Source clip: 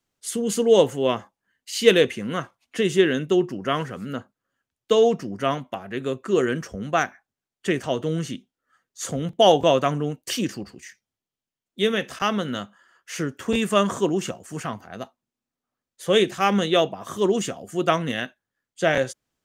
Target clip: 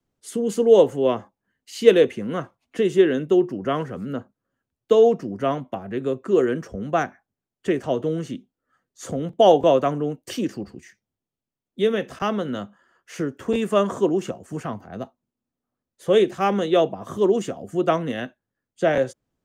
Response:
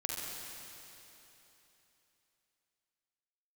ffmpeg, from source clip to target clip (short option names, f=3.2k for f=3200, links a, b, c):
-filter_complex "[0:a]tiltshelf=f=970:g=7,acrossover=split=280|700|3500[a][b][c][d];[a]acompressor=threshold=-31dB:ratio=6[e];[e][b][c][d]amix=inputs=4:normalize=0,volume=-1dB"